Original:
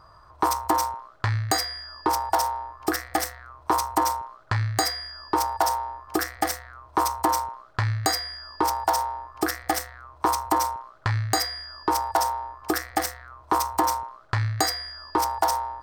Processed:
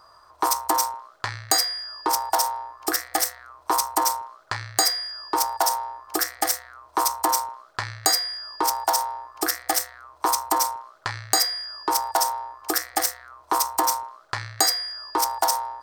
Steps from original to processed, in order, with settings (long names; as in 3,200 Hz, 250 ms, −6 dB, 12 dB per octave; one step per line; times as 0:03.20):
bass and treble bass −14 dB, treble +8 dB